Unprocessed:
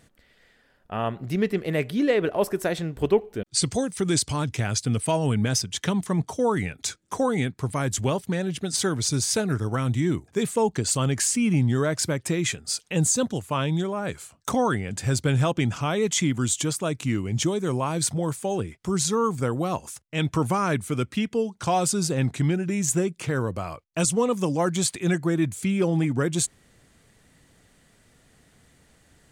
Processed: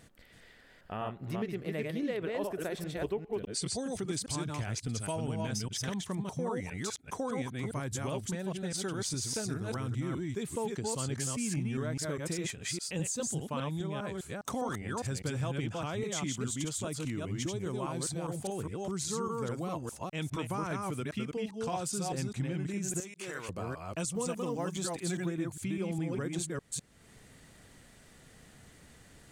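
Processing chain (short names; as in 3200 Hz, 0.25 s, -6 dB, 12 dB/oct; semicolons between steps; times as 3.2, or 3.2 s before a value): reverse delay 0.203 s, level -2 dB; 23–23.49 HPF 1300 Hz 6 dB/oct; compressor 2:1, threshold -43 dBFS, peak gain reduction 15.5 dB; 24.15–25.26 companded quantiser 8-bit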